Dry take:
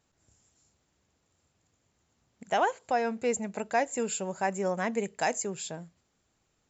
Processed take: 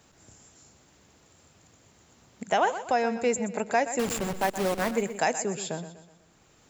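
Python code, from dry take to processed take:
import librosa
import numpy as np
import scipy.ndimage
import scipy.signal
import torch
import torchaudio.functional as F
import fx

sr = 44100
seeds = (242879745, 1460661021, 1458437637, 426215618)

y = fx.delta_hold(x, sr, step_db=-29.5, at=(3.99, 4.91))
y = fx.echo_feedback(y, sr, ms=123, feedback_pct=37, wet_db=-13)
y = fx.band_squash(y, sr, depth_pct=40)
y = y * librosa.db_to_amplitude(3.0)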